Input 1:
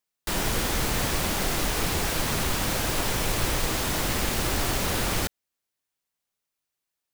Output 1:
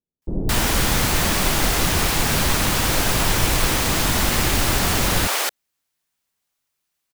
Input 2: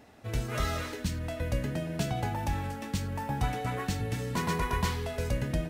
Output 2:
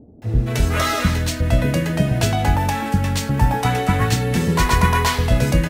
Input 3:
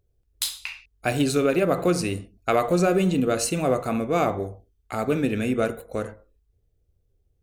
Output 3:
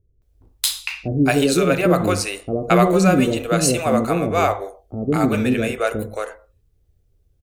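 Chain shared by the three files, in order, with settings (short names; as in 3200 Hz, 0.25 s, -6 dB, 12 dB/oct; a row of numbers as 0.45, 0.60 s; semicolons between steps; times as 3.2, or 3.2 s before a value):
bands offset in time lows, highs 0.22 s, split 460 Hz; match loudness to -19 LUFS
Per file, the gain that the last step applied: +7.5, +14.0, +6.5 dB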